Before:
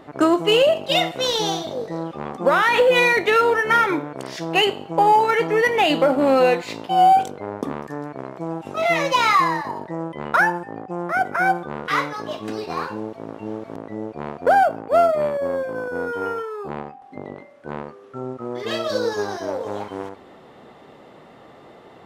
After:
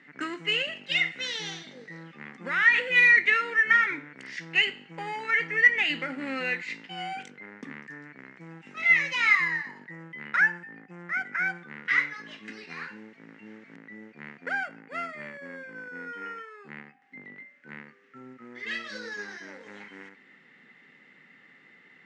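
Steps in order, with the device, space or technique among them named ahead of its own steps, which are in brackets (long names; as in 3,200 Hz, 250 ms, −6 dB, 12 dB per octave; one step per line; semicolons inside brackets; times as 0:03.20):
television speaker (loudspeaker in its box 220–7,500 Hz, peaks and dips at 270 Hz +3 dB, 650 Hz −10 dB, 2,300 Hz −8 dB)
drawn EQ curve 160 Hz 0 dB, 320 Hz −18 dB, 1,100 Hz −18 dB, 2,100 Hz +12 dB, 3,400 Hz −9 dB
level −1.5 dB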